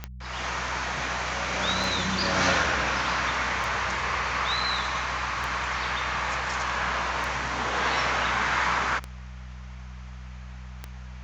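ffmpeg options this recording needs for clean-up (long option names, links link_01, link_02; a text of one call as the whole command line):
ffmpeg -i in.wav -af "adeclick=threshold=4,bandreject=frequency=62.5:width_type=h:width=4,bandreject=frequency=125:width_type=h:width=4,bandreject=frequency=187.5:width_type=h:width=4" out.wav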